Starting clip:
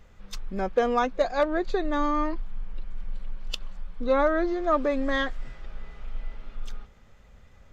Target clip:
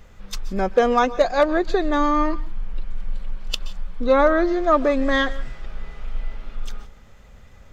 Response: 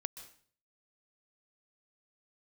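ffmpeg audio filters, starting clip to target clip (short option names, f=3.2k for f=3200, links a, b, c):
-filter_complex "[0:a]asplit=2[a][b];[1:a]atrim=start_sample=2205,afade=t=out:st=0.23:d=0.01,atrim=end_sample=10584,highshelf=f=6k:g=7.5[c];[b][c]afir=irnorm=-1:irlink=0,volume=-1dB[d];[a][d]amix=inputs=2:normalize=0,volume=1.5dB"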